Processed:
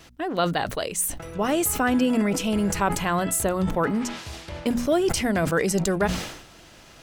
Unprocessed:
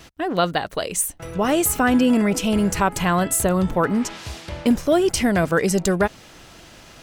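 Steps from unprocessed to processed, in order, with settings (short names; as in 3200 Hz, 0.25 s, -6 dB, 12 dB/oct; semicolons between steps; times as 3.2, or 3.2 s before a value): notches 60/120/180/240 Hz; sustainer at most 69 dB/s; gain -4 dB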